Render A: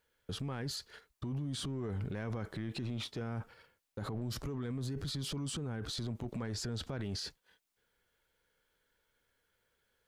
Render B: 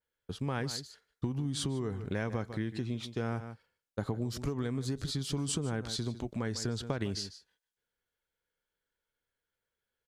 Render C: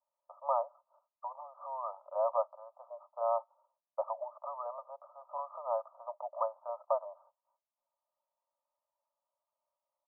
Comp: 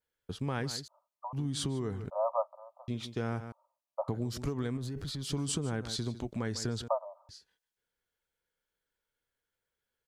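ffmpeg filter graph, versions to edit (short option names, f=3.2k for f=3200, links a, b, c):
-filter_complex "[2:a]asplit=4[a][b][c][d];[1:a]asplit=6[e][f][g][h][i][j];[e]atrim=end=0.882[k];[a]atrim=start=0.878:end=1.332[l];[f]atrim=start=1.328:end=2.102[m];[b]atrim=start=2.098:end=2.882[n];[g]atrim=start=2.878:end=3.522[o];[c]atrim=start=3.518:end=4.082[p];[h]atrim=start=4.078:end=4.772[q];[0:a]atrim=start=4.768:end=5.232[r];[i]atrim=start=5.228:end=6.882[s];[d]atrim=start=6.878:end=7.292[t];[j]atrim=start=7.288[u];[k][l]acrossfade=d=0.004:c1=hsin:c2=hsin[v];[v][m]acrossfade=d=0.004:c1=hsin:c2=hsin[w];[w][n]acrossfade=d=0.004:c1=hsin:c2=hsin[x];[x][o]acrossfade=d=0.004:c1=hsin:c2=hsin[y];[y][p]acrossfade=d=0.004:c1=hsin:c2=hsin[z];[z][q]acrossfade=d=0.004:c1=hsin:c2=hsin[aa];[aa][r]acrossfade=d=0.004:c1=hsin:c2=hsin[ab];[ab][s]acrossfade=d=0.004:c1=hsin:c2=hsin[ac];[ac][t]acrossfade=d=0.004:c1=hsin:c2=hsin[ad];[ad][u]acrossfade=d=0.004:c1=hsin:c2=hsin"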